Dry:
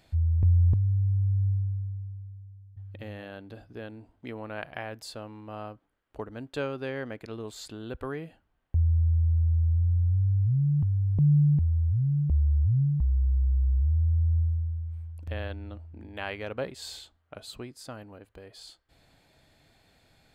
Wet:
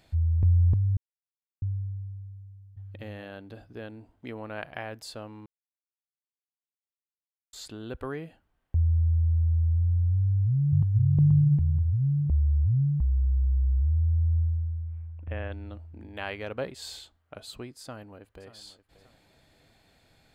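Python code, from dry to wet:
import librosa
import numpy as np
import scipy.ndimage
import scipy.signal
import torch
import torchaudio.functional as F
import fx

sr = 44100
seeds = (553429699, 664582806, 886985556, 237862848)

y = fx.echo_throw(x, sr, start_s=10.24, length_s=0.66, ms=480, feedback_pct=35, wet_db=0.0)
y = fx.steep_lowpass(y, sr, hz=2800.0, slope=36, at=(12.25, 15.52))
y = fx.echo_throw(y, sr, start_s=17.82, length_s=0.7, ms=580, feedback_pct=35, wet_db=-15.0)
y = fx.edit(y, sr, fx.silence(start_s=0.97, length_s=0.65),
    fx.silence(start_s=5.46, length_s=2.07), tone=tone)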